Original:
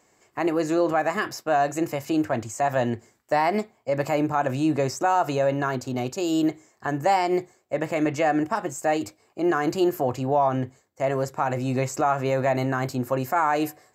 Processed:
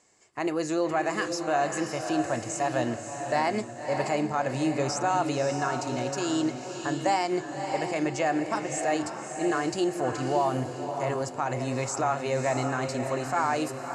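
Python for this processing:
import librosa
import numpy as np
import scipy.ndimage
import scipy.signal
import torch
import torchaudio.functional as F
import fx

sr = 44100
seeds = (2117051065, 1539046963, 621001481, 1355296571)

y = scipy.signal.sosfilt(scipy.signal.ellip(4, 1.0, 50, 10000.0, 'lowpass', fs=sr, output='sos'), x)
y = fx.high_shelf(y, sr, hz=3900.0, db=8.0)
y = fx.echo_diffused(y, sr, ms=593, feedback_pct=40, wet_db=-6)
y = y * 10.0 ** (-4.0 / 20.0)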